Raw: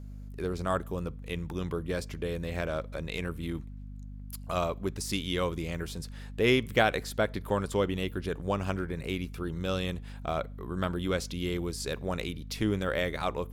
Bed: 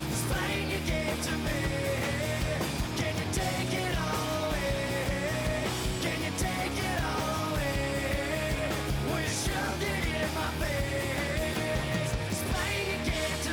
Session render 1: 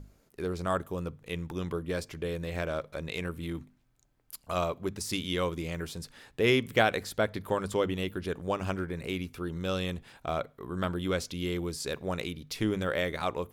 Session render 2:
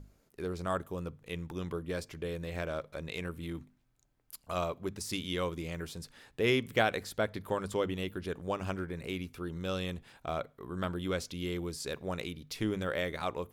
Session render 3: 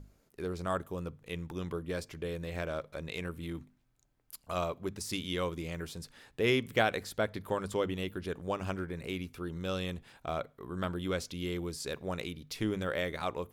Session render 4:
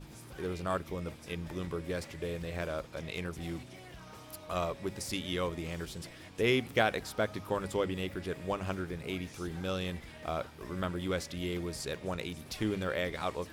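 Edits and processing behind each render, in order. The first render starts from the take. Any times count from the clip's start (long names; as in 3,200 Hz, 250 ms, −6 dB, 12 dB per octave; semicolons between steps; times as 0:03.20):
mains-hum notches 50/100/150/200/250 Hz
level −3.5 dB
no processing that can be heard
mix in bed −19.5 dB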